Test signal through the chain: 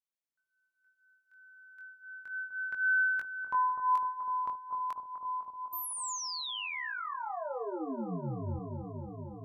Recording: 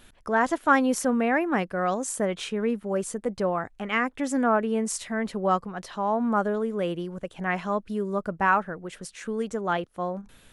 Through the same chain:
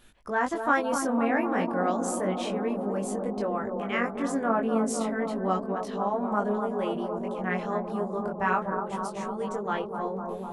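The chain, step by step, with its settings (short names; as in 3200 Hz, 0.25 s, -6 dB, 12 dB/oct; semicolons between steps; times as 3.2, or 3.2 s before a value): analogue delay 0.251 s, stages 2048, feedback 83%, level -6 dB; chorus 0.31 Hz, delay 19.5 ms, depth 2.9 ms; gain -1 dB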